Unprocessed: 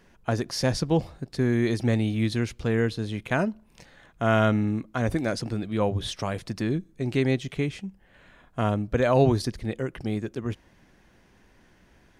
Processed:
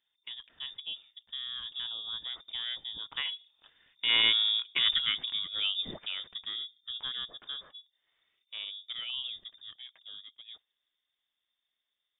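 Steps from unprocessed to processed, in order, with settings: Doppler pass-by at 4.73 s, 15 m/s, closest 8.6 m; dynamic bell 280 Hz, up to -4 dB, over -37 dBFS, Q 0.78; gate -56 dBFS, range -7 dB; frequency inversion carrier 3.6 kHz

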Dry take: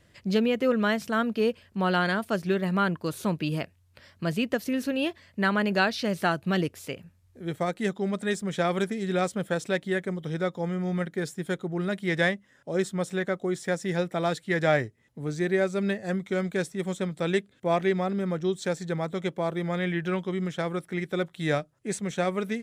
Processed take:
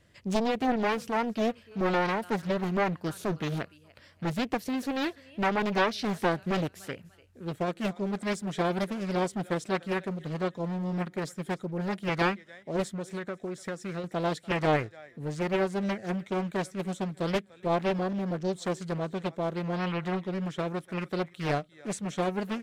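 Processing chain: 12.88–14.04 s: compression 5:1, threshold -30 dBFS, peak gain reduction 8 dB; on a send: thinning echo 294 ms, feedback 34%, high-pass 410 Hz, level -21.5 dB; on the sum: loudspeaker Doppler distortion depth 0.93 ms; trim -2.5 dB

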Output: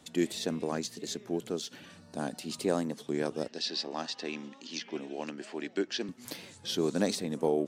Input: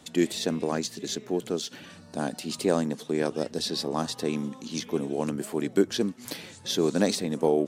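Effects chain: 3.48–6.09 s: cabinet simulation 320–6400 Hz, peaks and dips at 460 Hz -6 dB, 1.1 kHz -4 dB, 1.8 kHz +5 dB, 2.7 kHz +7 dB, 4.7 kHz +4 dB; warped record 33 1/3 rpm, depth 100 cents; trim -5 dB

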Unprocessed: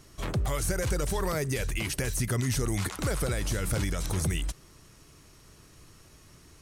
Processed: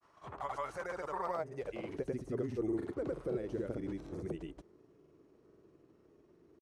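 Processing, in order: granulator, pitch spread up and down by 0 st; band-pass sweep 950 Hz -> 380 Hz, 1.15–2.12 s; trim +2.5 dB

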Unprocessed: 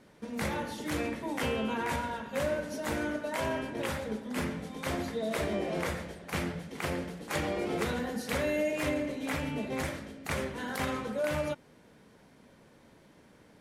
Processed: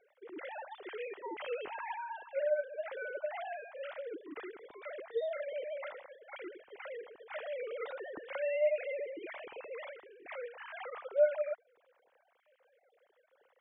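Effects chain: formants replaced by sine waves; trim -5 dB

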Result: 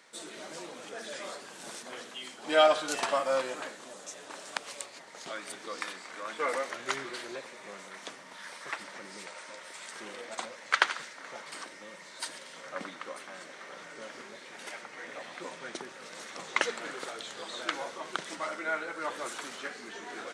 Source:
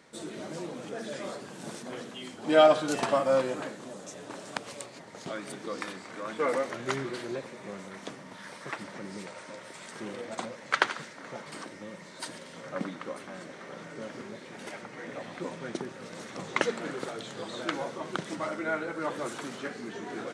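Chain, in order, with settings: high-pass 1.1 kHz 6 dB/octave; trim +2.5 dB

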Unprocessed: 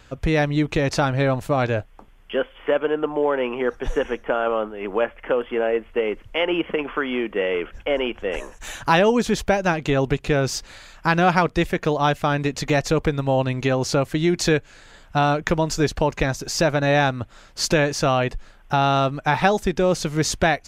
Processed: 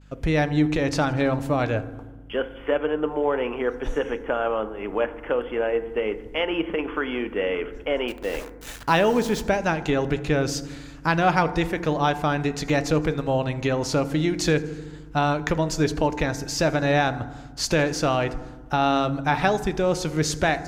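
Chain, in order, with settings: on a send: feedback echo behind a high-pass 81 ms, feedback 66%, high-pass 4.4 kHz, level -21 dB; on the sum: expander -44 dBFS; 8.08–9.41 s: small samples zeroed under -31.5 dBFS; hum 50 Hz, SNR 25 dB; FDN reverb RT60 1.2 s, low-frequency decay 1.6×, high-frequency decay 0.3×, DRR 11 dB; trim -3 dB

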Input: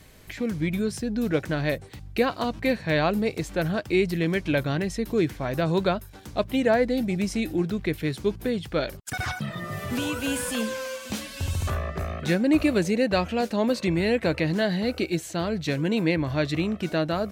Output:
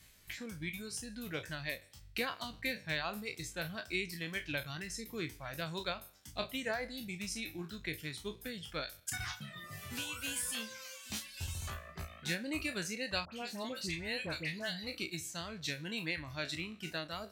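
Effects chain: spectral sustain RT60 0.61 s; amplifier tone stack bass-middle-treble 5-5-5; transient shaper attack +3 dB, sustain -1 dB; 13.25–14.87 s: phase dispersion highs, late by 75 ms, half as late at 1.5 kHz; reverb removal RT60 0.97 s

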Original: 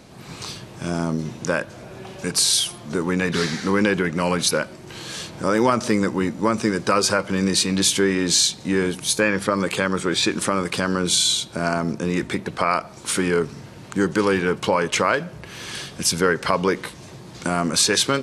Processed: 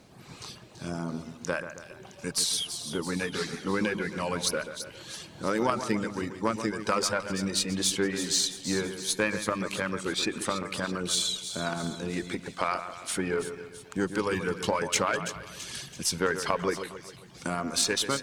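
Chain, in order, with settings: chunks repeated in reverse 175 ms, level -13.5 dB; reverb removal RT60 1.3 s; 14.31–15.89 s: tone controls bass +4 dB, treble +7 dB; bit crusher 11-bit; Chebyshev shaper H 3 -18 dB, 8 -38 dB, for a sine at -3.5 dBFS; two-band feedback delay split 2.6 kHz, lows 135 ms, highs 332 ms, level -10 dB; trim -4.5 dB

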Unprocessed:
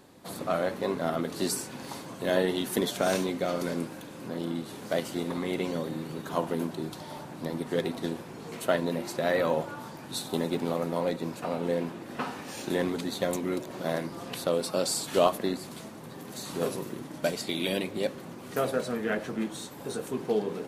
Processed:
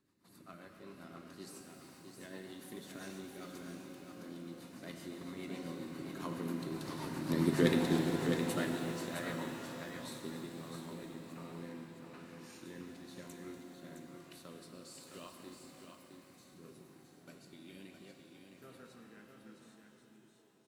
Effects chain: fade out at the end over 1.60 s; Doppler pass-by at 7.56 s, 6 m/s, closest 1.4 m; high-order bell 600 Hz -9.5 dB 1.1 oct; band-stop 3.3 kHz, Q 12; in parallel at -1.5 dB: compression, threshold -55 dBFS, peak gain reduction 25 dB; on the sum: rotary cabinet horn 7.5 Hz, later 1.1 Hz, at 9.81 s; on a send: delay 663 ms -6.5 dB; on the sum: pitch-shifted reverb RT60 3.3 s, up +12 st, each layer -8 dB, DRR 4 dB; trim +5.5 dB

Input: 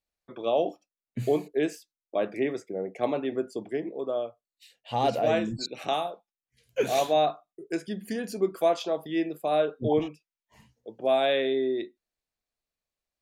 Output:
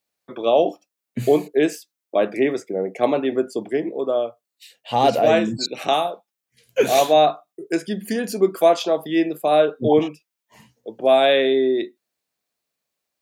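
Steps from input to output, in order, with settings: high-pass 140 Hz; treble shelf 11 kHz +5 dB; trim +8.5 dB

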